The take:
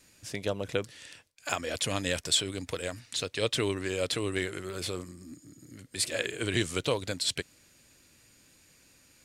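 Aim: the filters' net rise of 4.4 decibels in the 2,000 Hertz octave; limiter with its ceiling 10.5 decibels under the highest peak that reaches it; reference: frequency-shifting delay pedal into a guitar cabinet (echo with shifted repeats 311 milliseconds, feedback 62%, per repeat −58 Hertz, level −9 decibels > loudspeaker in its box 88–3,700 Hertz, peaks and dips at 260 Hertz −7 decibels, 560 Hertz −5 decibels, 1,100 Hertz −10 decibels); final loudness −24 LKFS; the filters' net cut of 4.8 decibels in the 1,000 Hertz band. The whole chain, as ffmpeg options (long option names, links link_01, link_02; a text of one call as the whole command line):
ffmpeg -i in.wav -filter_complex "[0:a]equalizer=frequency=1000:width_type=o:gain=-4.5,equalizer=frequency=2000:width_type=o:gain=7.5,alimiter=limit=-18dB:level=0:latency=1,asplit=9[link_01][link_02][link_03][link_04][link_05][link_06][link_07][link_08][link_09];[link_02]adelay=311,afreqshift=-58,volume=-9dB[link_10];[link_03]adelay=622,afreqshift=-116,volume=-13.2dB[link_11];[link_04]adelay=933,afreqshift=-174,volume=-17.3dB[link_12];[link_05]adelay=1244,afreqshift=-232,volume=-21.5dB[link_13];[link_06]adelay=1555,afreqshift=-290,volume=-25.6dB[link_14];[link_07]adelay=1866,afreqshift=-348,volume=-29.8dB[link_15];[link_08]adelay=2177,afreqshift=-406,volume=-33.9dB[link_16];[link_09]adelay=2488,afreqshift=-464,volume=-38.1dB[link_17];[link_01][link_10][link_11][link_12][link_13][link_14][link_15][link_16][link_17]amix=inputs=9:normalize=0,highpass=88,equalizer=frequency=260:width_type=q:width=4:gain=-7,equalizer=frequency=560:width_type=q:width=4:gain=-5,equalizer=frequency=1100:width_type=q:width=4:gain=-10,lowpass=frequency=3700:width=0.5412,lowpass=frequency=3700:width=1.3066,volume=10.5dB" out.wav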